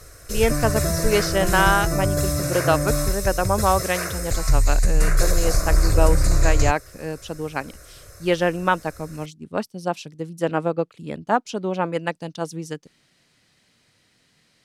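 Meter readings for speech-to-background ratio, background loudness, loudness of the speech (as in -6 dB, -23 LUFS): -2.0 dB, -23.0 LUFS, -25.0 LUFS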